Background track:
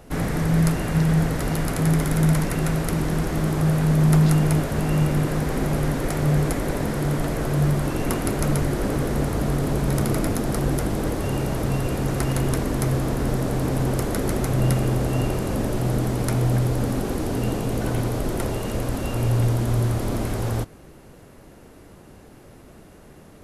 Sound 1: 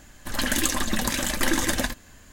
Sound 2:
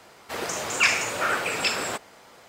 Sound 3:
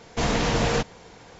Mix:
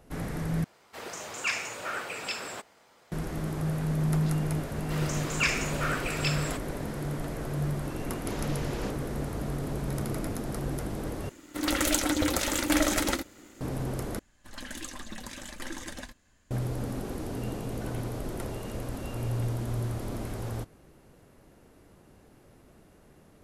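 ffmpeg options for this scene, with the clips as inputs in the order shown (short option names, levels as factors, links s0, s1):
-filter_complex "[2:a]asplit=2[s0][s1];[1:a]asplit=2[s2][s3];[0:a]volume=0.316[s4];[s1]bandreject=f=820:w=5.1[s5];[s2]aeval=exprs='val(0)*sin(2*PI*300*n/s)':c=same[s6];[s3]equalizer=f=15000:t=o:w=0.35:g=-14.5[s7];[s4]asplit=4[s8][s9][s10][s11];[s8]atrim=end=0.644[s12];[s0]atrim=end=2.48,asetpts=PTS-STARTPTS,volume=0.335[s13];[s9]atrim=start=3.116:end=11.294[s14];[s6]atrim=end=2.32[s15];[s10]atrim=start=13.606:end=14.194[s16];[s7]atrim=end=2.32,asetpts=PTS-STARTPTS,volume=0.168[s17];[s11]atrim=start=16.506[s18];[s5]atrim=end=2.48,asetpts=PTS-STARTPTS,volume=0.473,afade=t=in:d=0.004:c=hsin,afade=t=out:st=2.476:d=0.004:c=hsin,adelay=4600[s19];[3:a]atrim=end=1.39,asetpts=PTS-STARTPTS,volume=0.158,afade=t=in:d=0.004:c=hsin,afade=t=out:st=1.386:d=0.004:c=hsin,adelay=8090[s20];[s12][s13]acrossfade=d=0.004:c1=hsin:c2=hsin[s21];[s21][s14]acrossfade=d=0.004:c1=hsin:c2=hsin[s22];[s22][s15]acrossfade=d=0.004:c1=hsin:c2=hsin[s23];[s23][s16]acrossfade=d=0.004:c1=hsin:c2=hsin[s24];[s24][s17]acrossfade=d=0.004:c1=hsin:c2=hsin[s25];[s25][s18]acrossfade=d=0.004:c1=hsin:c2=hsin[s26];[s26][s19][s20]amix=inputs=3:normalize=0"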